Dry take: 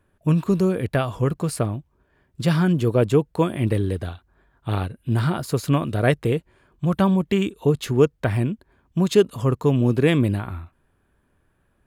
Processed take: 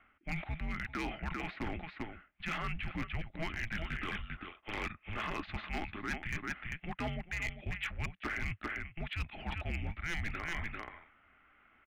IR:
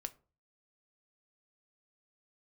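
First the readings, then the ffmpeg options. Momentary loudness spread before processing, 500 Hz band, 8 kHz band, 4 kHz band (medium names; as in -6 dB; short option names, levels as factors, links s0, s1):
9 LU, -26.0 dB, -17.0 dB, -10.5 dB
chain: -filter_complex "[0:a]bandreject=f=1300:w=17,highpass=f=220:t=q:w=0.5412,highpass=f=220:t=q:w=1.307,lowpass=f=3400:t=q:w=0.5176,lowpass=f=3400:t=q:w=0.7071,lowpass=f=3400:t=q:w=1.932,afreqshift=-330,asplit=2[s0][s1];[s1]aecho=0:1:395:0.237[s2];[s0][s2]amix=inputs=2:normalize=0,asplit=2[s3][s4];[s4]highpass=f=720:p=1,volume=5.01,asoftclip=type=tanh:threshold=0.562[s5];[s3][s5]amix=inputs=2:normalize=0,lowpass=f=1500:p=1,volume=0.501,equalizer=f=125:t=o:w=1:g=-11,equalizer=f=500:t=o:w=1:g=-11,equalizer=f=1000:t=o:w=1:g=-8,equalizer=f=2000:t=o:w=1:g=8,areverse,acompressor=threshold=0.01:ratio=6,areverse,asoftclip=type=hard:threshold=0.0158,volume=1.88"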